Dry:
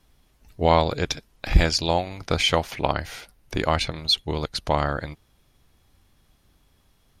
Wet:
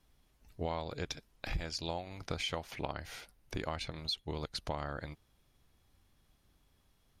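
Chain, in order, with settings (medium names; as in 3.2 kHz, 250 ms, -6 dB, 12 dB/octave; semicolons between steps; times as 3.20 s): compression 4:1, threshold -26 dBFS, peak gain reduction 15 dB; trim -8.5 dB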